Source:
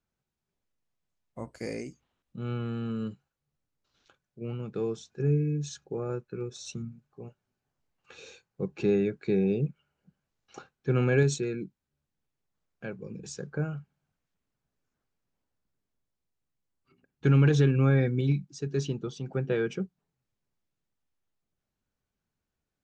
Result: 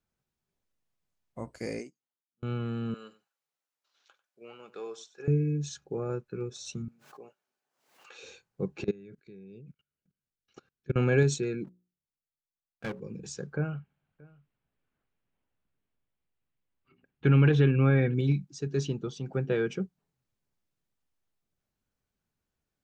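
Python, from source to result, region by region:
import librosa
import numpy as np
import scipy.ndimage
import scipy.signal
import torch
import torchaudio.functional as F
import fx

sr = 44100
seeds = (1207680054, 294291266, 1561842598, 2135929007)

y = fx.chain(x, sr, fx.highpass(hz=190.0, slope=12),
    fx.auto_swell(attack_ms=367.0),
    fx.upward_expand(threshold_db=-51.0, expansion=2.5), at=(1.79, 2.43))
y = fx.chain(y, sr, fx.highpass(hz=680.0, slope=12),
    fx.echo_single(ms=95, db=-17.0), at=(2.94, 5.28))
y = fx.chain(y, sr, fx.highpass(hz=450.0, slope=12),
    fx.pre_swell(db_per_s=89.0), at=(6.88, 8.23))
y = fx.chain(y, sr, fx.peak_eq(hz=820.0, db=-10.5, octaves=0.99),
    fx.level_steps(step_db=24), at=(8.84, 10.96))
y = fx.chain(y, sr, fx.level_steps(step_db=19),
    fx.leveller(passes=3),
    fx.hum_notches(base_hz=60, count=9), at=(11.64, 13.0))
y = fx.chain(y, sr, fx.high_shelf_res(hz=4200.0, db=-12.0, q=1.5),
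    fx.echo_single(ms=627, db=-24.0), at=(13.56, 18.14))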